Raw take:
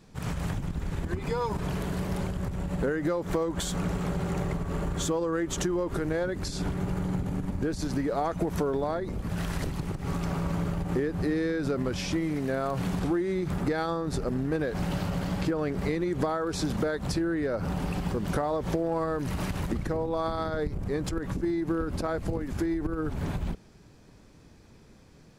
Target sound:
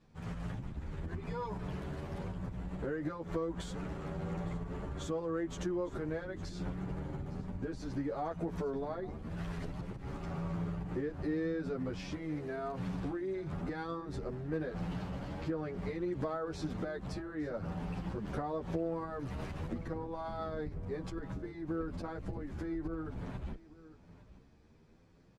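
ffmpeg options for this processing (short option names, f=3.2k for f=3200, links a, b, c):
-filter_complex "[0:a]aemphasis=mode=reproduction:type=50fm,aecho=1:1:860:0.133,asplit=2[a][b];[b]adelay=10.3,afreqshift=0.97[c];[a][c]amix=inputs=2:normalize=1,volume=-6.5dB"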